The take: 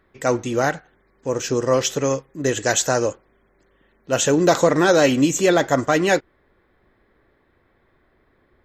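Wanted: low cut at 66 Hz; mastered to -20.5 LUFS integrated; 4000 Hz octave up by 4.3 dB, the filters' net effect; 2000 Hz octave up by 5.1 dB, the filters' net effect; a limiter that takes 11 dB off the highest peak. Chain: HPF 66 Hz; bell 2000 Hz +6 dB; bell 4000 Hz +3.5 dB; gain +2.5 dB; limiter -9.5 dBFS

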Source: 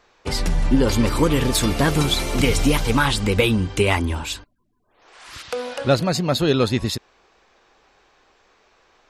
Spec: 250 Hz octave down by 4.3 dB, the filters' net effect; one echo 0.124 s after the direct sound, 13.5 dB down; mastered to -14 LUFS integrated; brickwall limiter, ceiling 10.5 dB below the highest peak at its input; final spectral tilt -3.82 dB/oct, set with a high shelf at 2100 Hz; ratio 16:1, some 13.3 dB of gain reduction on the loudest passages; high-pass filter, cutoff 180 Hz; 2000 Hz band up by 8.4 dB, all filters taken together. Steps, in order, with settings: HPF 180 Hz; bell 250 Hz -4 dB; bell 2000 Hz +7.5 dB; high shelf 2100 Hz +5.5 dB; compressor 16:1, threshold -23 dBFS; limiter -19 dBFS; echo 0.124 s -13.5 dB; gain +15.5 dB

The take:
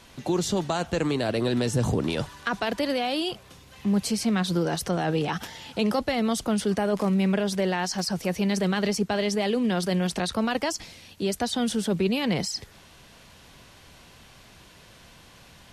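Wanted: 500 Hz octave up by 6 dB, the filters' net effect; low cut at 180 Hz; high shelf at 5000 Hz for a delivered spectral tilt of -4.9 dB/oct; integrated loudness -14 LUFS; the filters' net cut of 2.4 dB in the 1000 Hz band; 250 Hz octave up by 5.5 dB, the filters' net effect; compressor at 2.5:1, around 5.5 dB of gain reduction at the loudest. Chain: HPF 180 Hz; bell 250 Hz +8 dB; bell 500 Hz +7 dB; bell 1000 Hz -8.5 dB; high shelf 5000 Hz +5 dB; compressor 2.5:1, threshold -23 dBFS; gain +12 dB

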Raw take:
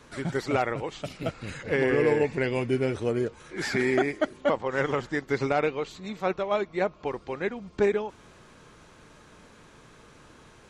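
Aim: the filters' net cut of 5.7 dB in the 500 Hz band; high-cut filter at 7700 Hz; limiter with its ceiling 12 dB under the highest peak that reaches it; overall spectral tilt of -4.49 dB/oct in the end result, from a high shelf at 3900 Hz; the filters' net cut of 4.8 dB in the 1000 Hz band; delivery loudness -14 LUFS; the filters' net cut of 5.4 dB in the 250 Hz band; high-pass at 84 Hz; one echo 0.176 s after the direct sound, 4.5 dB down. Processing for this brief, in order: HPF 84 Hz; LPF 7700 Hz; bell 250 Hz -5 dB; bell 500 Hz -4.5 dB; bell 1000 Hz -5.5 dB; high shelf 3900 Hz +8 dB; limiter -26 dBFS; echo 0.176 s -4.5 dB; gain +22 dB

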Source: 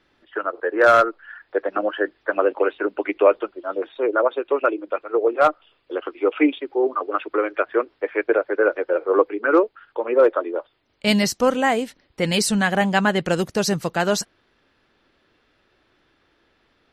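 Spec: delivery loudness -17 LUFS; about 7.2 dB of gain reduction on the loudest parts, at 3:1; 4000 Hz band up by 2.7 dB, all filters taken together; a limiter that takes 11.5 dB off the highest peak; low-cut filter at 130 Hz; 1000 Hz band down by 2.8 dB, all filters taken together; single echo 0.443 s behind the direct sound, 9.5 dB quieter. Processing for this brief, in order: HPF 130 Hz; bell 1000 Hz -4.5 dB; bell 4000 Hz +4 dB; compressor 3:1, threshold -21 dBFS; limiter -21.5 dBFS; echo 0.443 s -9.5 dB; gain +14.5 dB

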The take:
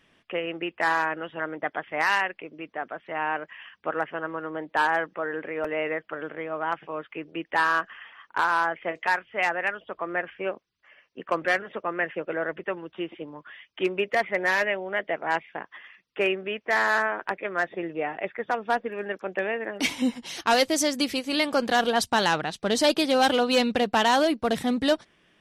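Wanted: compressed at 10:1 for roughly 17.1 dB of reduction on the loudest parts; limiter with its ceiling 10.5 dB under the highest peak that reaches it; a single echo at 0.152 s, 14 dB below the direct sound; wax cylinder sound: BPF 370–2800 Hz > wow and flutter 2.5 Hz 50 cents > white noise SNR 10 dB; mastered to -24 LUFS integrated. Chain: compressor 10:1, threshold -35 dBFS; limiter -30.5 dBFS; BPF 370–2800 Hz; echo 0.152 s -14 dB; wow and flutter 2.5 Hz 50 cents; white noise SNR 10 dB; gain +18.5 dB

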